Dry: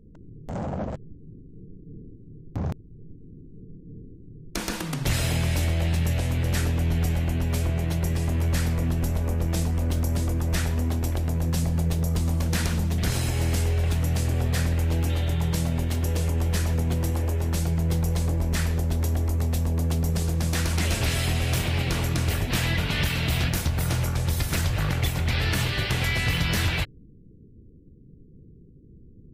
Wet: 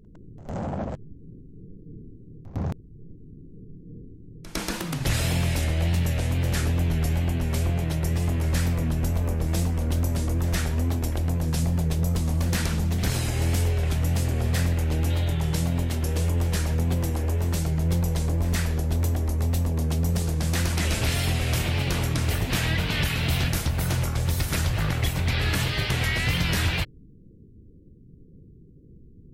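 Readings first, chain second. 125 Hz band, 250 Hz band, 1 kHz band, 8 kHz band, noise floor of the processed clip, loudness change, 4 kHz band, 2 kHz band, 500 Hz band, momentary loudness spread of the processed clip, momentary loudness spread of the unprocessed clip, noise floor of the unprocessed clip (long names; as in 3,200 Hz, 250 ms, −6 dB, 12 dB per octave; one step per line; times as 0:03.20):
0.0 dB, 0.0 dB, 0.0 dB, 0.0 dB, −49 dBFS, 0.0 dB, 0.0 dB, 0.0 dB, 0.0 dB, 7 LU, 7 LU, −49 dBFS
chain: tape wow and flutter 76 cents
backwards echo 106 ms −16.5 dB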